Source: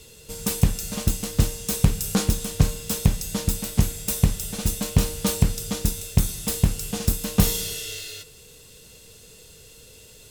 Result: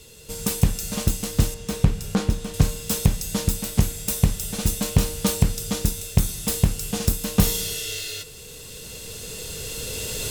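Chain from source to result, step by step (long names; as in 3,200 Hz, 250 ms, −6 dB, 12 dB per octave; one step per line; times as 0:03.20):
camcorder AGC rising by 6.9 dB per second
0:01.54–0:02.54: low-pass filter 2,500 Hz 6 dB per octave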